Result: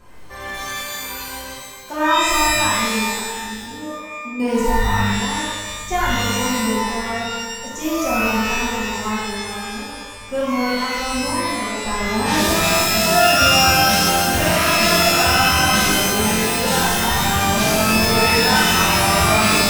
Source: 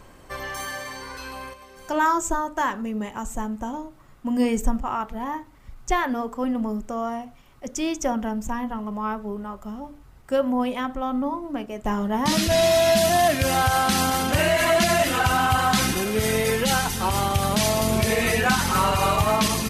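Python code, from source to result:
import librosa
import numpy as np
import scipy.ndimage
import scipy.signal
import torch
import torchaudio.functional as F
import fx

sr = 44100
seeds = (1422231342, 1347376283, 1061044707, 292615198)

y = fx.formant_cascade(x, sr, vowel='u', at=(3.19, 4.4))
y = fx.rev_shimmer(y, sr, seeds[0], rt60_s=1.2, semitones=12, shimmer_db=-2, drr_db=-7.5)
y = y * 10.0 ** (-6.0 / 20.0)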